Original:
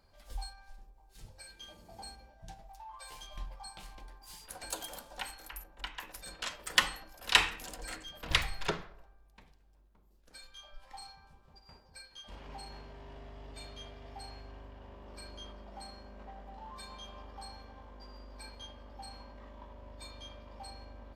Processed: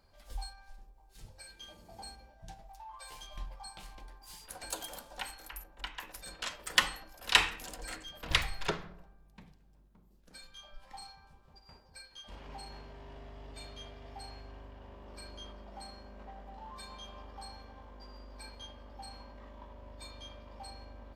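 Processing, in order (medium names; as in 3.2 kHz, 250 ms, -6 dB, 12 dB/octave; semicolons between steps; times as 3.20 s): 8.83–11.04 s: peaking EQ 170 Hz +14.5 dB -> +6.5 dB 1.3 oct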